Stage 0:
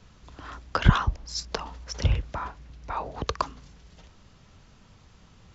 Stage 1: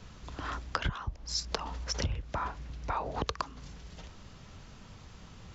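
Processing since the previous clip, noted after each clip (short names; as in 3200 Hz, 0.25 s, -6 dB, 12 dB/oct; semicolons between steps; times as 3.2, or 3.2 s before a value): compressor 12:1, threshold -33 dBFS, peak gain reduction 24 dB; gain +4 dB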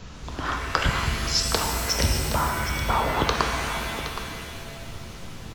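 echo 0.769 s -11.5 dB; shimmer reverb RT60 1.9 s, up +7 st, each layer -2 dB, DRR 3 dB; gain +8.5 dB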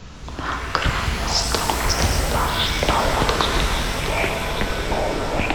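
echoes that change speed 0.571 s, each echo -7 st, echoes 3; Doppler distortion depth 0.49 ms; gain +2.5 dB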